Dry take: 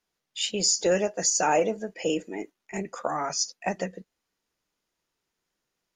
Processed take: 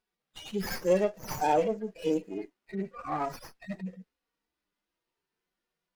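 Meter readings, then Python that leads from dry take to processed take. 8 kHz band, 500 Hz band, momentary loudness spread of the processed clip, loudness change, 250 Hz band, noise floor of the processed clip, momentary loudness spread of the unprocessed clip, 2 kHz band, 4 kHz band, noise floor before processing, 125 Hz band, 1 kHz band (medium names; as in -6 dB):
-21.0 dB, -2.5 dB, 15 LU, -5.0 dB, -1.5 dB, under -85 dBFS, 14 LU, -7.5 dB, -14.5 dB, -83 dBFS, -0.5 dB, -2.5 dB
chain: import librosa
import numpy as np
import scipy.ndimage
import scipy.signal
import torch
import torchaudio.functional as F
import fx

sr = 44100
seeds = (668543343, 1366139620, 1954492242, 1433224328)

y = fx.hpss_only(x, sr, part='harmonic')
y = fx.running_max(y, sr, window=5)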